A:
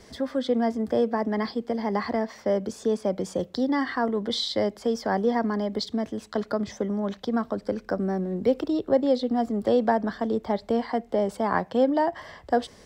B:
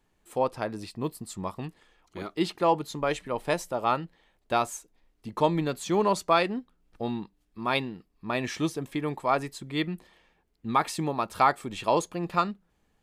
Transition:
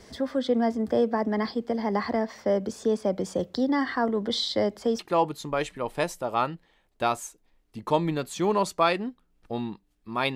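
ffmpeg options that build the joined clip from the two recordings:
-filter_complex "[0:a]apad=whole_dur=10.35,atrim=end=10.35,atrim=end=4.992[s0];[1:a]atrim=start=2.488:end=7.85[s1];[s0][s1]acrossfade=d=0.004:c1=hsin:c2=hsin"

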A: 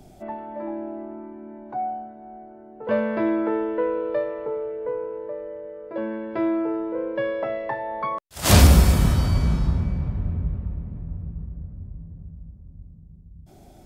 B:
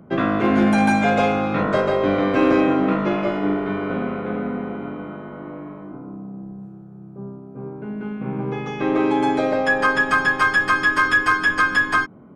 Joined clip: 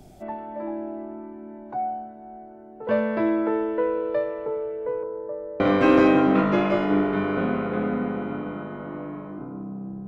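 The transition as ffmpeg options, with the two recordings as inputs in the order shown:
-filter_complex "[0:a]asettb=1/sr,asplit=3[s0][s1][s2];[s0]atrim=end=5.034[s3];[s1]atrim=start=5.03:end=5.6,asetpts=PTS-STARTPTS,afade=t=in:d=0.004:c=qsin,afade=t=out:st=0.566:d=0.004:c=qsin,lowpass=f=1500:w=0.5412,lowpass=f=1500:w=1.3066[s4];[s2]atrim=start=5.596[s5];[s3][s4]acrossfade=d=0.004:c1=hsin:c2=qsin[s6];[s6][s5]acrossfade=d=0.004:c1=qsin:c2=hsin,apad=whole_dur=10.07,atrim=end=10.07,atrim=end=5.602[s7];[1:a]atrim=start=2.128:end=6.6[s8];[s7][s8]acrossfade=d=0.004:c1=hsin:c2=hsin"

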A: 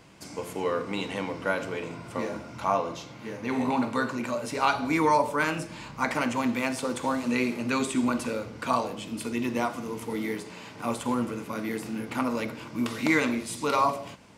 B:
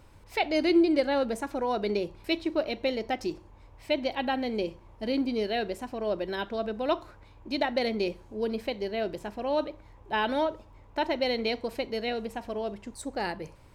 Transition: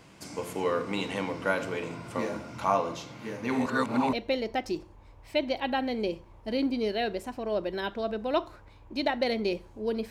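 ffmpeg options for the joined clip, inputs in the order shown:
-filter_complex "[0:a]apad=whole_dur=10.1,atrim=end=10.1,asplit=2[s0][s1];[s0]atrim=end=3.662[s2];[s1]atrim=start=3.658:end=4.132,asetpts=PTS-STARTPTS,areverse[s3];[1:a]atrim=start=2.678:end=8.65[s4];[s2][s3]acrossfade=d=0.004:c1=hsin:c2=hsin[s5];[s5][s4]acrossfade=d=0.004:c1=hsin:c2=hsin"

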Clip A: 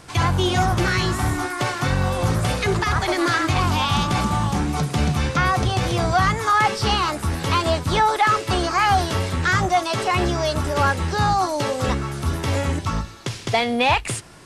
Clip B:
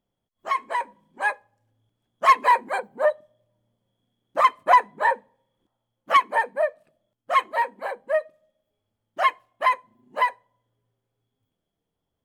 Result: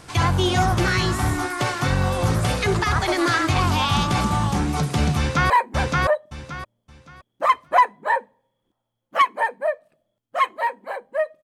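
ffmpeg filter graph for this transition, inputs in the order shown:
-filter_complex "[0:a]apad=whole_dur=11.43,atrim=end=11.43,atrim=end=5.502[s0];[1:a]atrim=start=2.448:end=8.38[s1];[s0][s1]acrossfade=d=0.004:c1=hsin:c2=hsin,asplit=2[s2][s3];[s3]afade=t=in:st=5.17:d=0.01,afade=t=out:st=5.5:d=0.01,aecho=0:1:570|1140|1710|2280:0.841395|0.210349|0.0525872|0.0131468[s4];[s2][s4]amix=inputs=2:normalize=0"

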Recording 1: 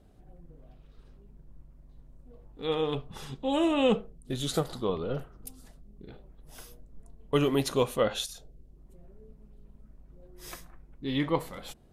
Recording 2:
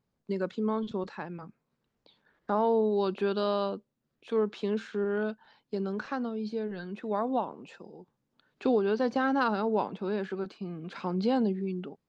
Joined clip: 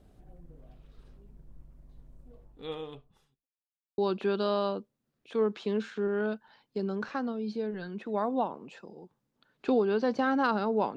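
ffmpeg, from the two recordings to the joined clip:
-filter_complex "[0:a]apad=whole_dur=10.96,atrim=end=10.96,asplit=2[s0][s1];[s0]atrim=end=3.47,asetpts=PTS-STARTPTS,afade=t=out:st=2.24:d=1.23:c=qua[s2];[s1]atrim=start=3.47:end=3.98,asetpts=PTS-STARTPTS,volume=0[s3];[1:a]atrim=start=2.95:end=9.93,asetpts=PTS-STARTPTS,afade=t=in:d=0.004:c=hsin[s4];[s2][s3][s4]concat=n=3:v=0:a=1"

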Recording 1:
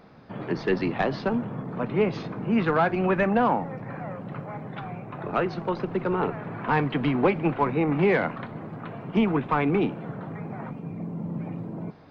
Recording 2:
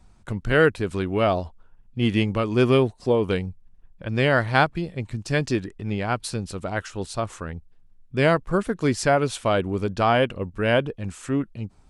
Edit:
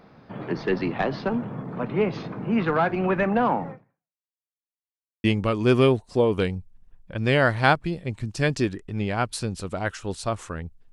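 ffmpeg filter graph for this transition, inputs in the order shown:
-filter_complex "[0:a]apad=whole_dur=10.92,atrim=end=10.92,asplit=2[s0][s1];[s0]atrim=end=4.25,asetpts=PTS-STARTPTS,afade=t=out:st=3.7:d=0.55:c=exp[s2];[s1]atrim=start=4.25:end=5.24,asetpts=PTS-STARTPTS,volume=0[s3];[1:a]atrim=start=2.15:end=7.83,asetpts=PTS-STARTPTS,afade=t=in:d=0.004:c=hsin[s4];[s2][s3][s4]concat=n=3:v=0:a=1"

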